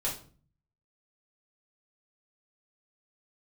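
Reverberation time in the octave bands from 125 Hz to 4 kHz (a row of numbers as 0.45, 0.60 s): 0.90, 0.65, 0.45, 0.40, 0.35, 0.35 s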